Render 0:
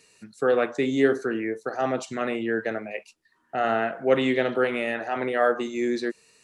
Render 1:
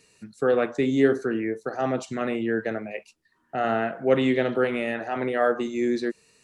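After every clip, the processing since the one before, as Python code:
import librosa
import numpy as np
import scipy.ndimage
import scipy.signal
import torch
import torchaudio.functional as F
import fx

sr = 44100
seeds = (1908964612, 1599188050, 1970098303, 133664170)

y = fx.low_shelf(x, sr, hz=290.0, db=7.5)
y = F.gain(torch.from_numpy(y), -2.0).numpy()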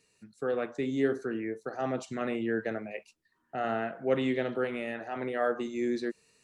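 y = fx.rider(x, sr, range_db=3, speed_s=2.0)
y = F.gain(torch.from_numpy(y), -7.5).numpy()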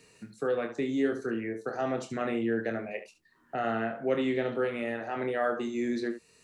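y = fx.room_early_taps(x, sr, ms=(26, 71), db=(-7.5, -12.5))
y = fx.band_squash(y, sr, depth_pct=40)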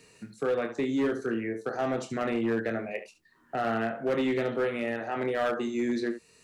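y = np.clip(x, -10.0 ** (-24.0 / 20.0), 10.0 ** (-24.0 / 20.0))
y = F.gain(torch.from_numpy(y), 2.0).numpy()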